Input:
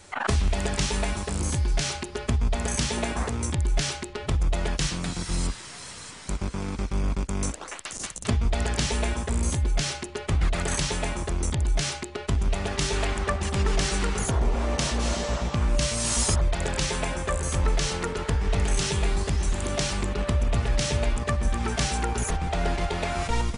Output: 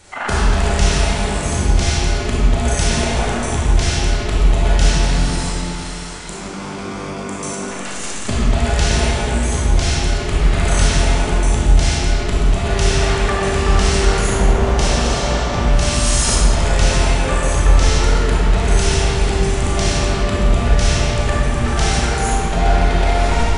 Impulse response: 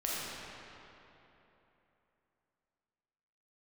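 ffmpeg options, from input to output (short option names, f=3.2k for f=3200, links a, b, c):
-filter_complex "[0:a]asettb=1/sr,asplit=3[a][b][c];[a]atrim=end=5.254[d];[b]atrim=start=5.25:end=7.57,asetpts=PTS-STARTPTS,afade=t=in:d=0.004:c=qsin,afade=t=out:st=2.316:d=0.004:c=qsin,highpass=200[e];[c]atrim=start=7.566[f];[d][e]acrossfade=d=0.004:c1=hsin:c2=qsin[g];[g][f]acrossfade=d=0.004:c1=qsin:c2=hsin[h];[1:a]atrim=start_sample=2205,asetrate=48510,aresample=44100[i];[h][i]afir=irnorm=-1:irlink=0,volume=4.5dB"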